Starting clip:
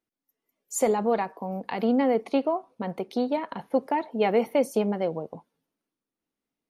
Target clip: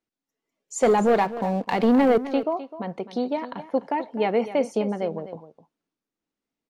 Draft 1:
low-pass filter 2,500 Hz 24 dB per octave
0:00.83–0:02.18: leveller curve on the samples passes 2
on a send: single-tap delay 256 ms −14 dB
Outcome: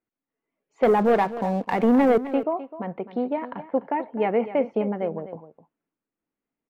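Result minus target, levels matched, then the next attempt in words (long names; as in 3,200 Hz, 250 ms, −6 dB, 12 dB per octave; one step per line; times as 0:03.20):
8,000 Hz band −19.0 dB
low-pass filter 8,000 Hz 24 dB per octave
0:00.83–0:02.18: leveller curve on the samples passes 2
on a send: single-tap delay 256 ms −14 dB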